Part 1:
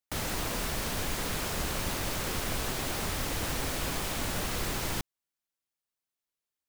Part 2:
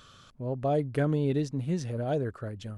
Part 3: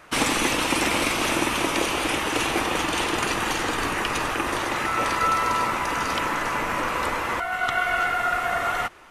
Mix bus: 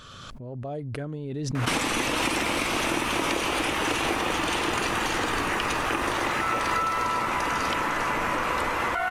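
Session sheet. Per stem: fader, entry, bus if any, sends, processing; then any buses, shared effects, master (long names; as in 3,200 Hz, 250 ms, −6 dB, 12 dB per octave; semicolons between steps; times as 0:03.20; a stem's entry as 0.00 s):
−18.0 dB, 2.05 s, no bus, no send, no processing
−7.5 dB, 0.00 s, bus A, no send, no processing
+3.0 dB, 1.55 s, bus A, no send, no processing
bus A: 0.0 dB, downward compressor, threshold −23 dBFS, peak gain reduction 9 dB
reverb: not used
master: high-shelf EQ 7,500 Hz −4 dB; background raised ahead of every attack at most 22 dB per second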